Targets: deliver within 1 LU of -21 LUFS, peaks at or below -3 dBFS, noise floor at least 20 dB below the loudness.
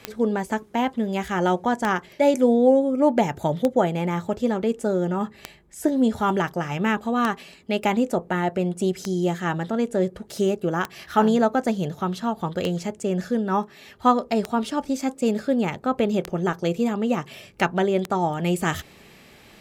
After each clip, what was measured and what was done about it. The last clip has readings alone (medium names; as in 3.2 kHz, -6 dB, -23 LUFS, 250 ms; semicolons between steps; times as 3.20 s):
clicks found 11; loudness -23.5 LUFS; peak level -4.0 dBFS; loudness target -21.0 LUFS
-> de-click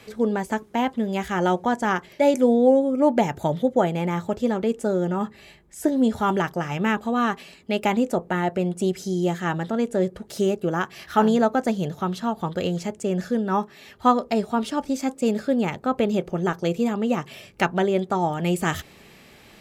clicks found 0; loudness -23.5 LUFS; peak level -4.0 dBFS; loudness target -21.0 LUFS
-> trim +2.5 dB; peak limiter -3 dBFS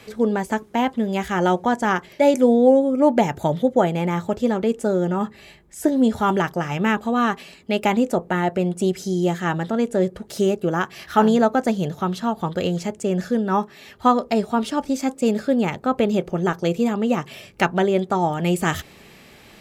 loudness -21.0 LUFS; peak level -3.0 dBFS; noise floor -48 dBFS